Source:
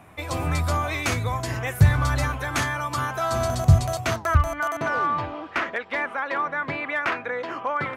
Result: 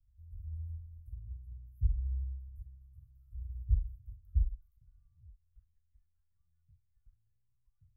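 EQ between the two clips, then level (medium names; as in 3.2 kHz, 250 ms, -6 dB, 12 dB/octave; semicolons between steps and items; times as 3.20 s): inverse Chebyshev band-stop 280–6400 Hz, stop band 80 dB; distance through air 59 m; +3.0 dB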